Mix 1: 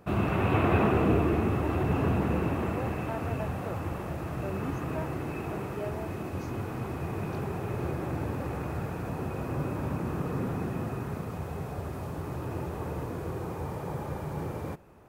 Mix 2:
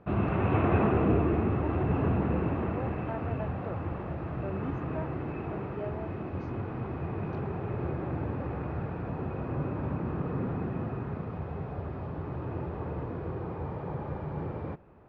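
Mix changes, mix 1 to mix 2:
background: add air absorption 120 m; master: add air absorption 280 m

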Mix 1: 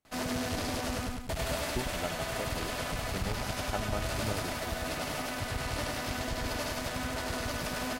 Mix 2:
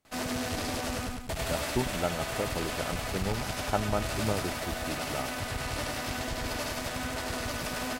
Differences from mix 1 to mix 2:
speech +7.0 dB; reverb: on, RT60 0.45 s

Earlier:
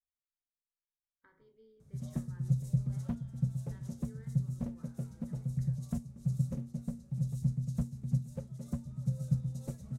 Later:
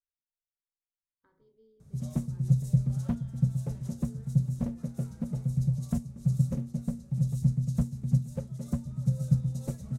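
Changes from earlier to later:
speech: add bell 2000 Hz -12 dB 1.1 oct; background +6.0 dB

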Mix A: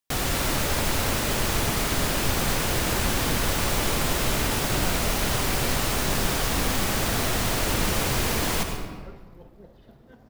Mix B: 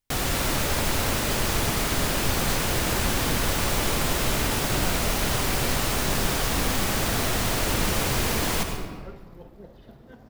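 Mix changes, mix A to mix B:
speech: unmuted; second sound +3.5 dB

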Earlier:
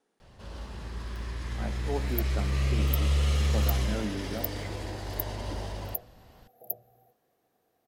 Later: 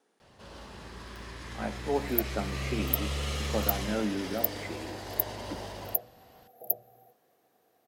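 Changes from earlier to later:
speech +5.0 dB; second sound +5.5 dB; master: add HPF 210 Hz 6 dB/oct

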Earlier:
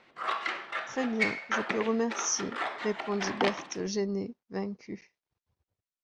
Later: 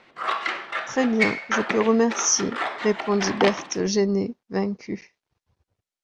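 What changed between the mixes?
speech +9.5 dB; background +6.0 dB

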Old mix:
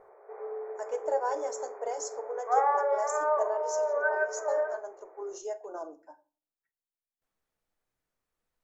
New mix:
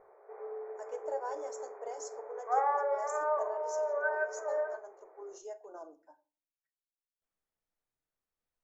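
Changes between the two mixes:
speech -8.0 dB; background -4.0 dB

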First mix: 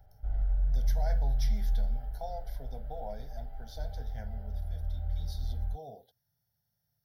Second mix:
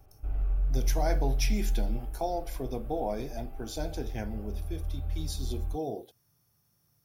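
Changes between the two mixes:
speech +7.5 dB; master: remove fixed phaser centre 1700 Hz, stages 8

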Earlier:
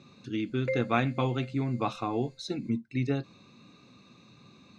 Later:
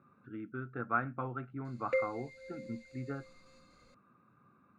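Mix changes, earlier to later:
speech: add ladder low-pass 1500 Hz, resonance 75%; background: entry +1.25 s

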